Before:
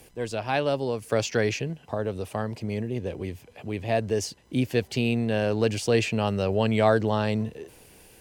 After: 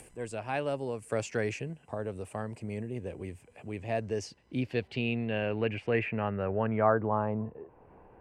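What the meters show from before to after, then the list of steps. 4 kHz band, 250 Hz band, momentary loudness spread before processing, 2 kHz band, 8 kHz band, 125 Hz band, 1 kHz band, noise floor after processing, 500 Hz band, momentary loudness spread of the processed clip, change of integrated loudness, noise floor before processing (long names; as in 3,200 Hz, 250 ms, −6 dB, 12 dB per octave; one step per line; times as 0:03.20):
−11.0 dB, −7.0 dB, 11 LU, −5.0 dB, −11.0 dB, −7.0 dB, −4.0 dB, −60 dBFS, −6.5 dB, 12 LU, −6.5 dB, −55 dBFS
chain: flat-topped bell 4,700 Hz −10 dB 1.3 octaves
upward compression, threshold −40 dBFS
low-pass filter sweep 8,000 Hz → 1,000 Hz, 0:03.61–0:07.31
level −7 dB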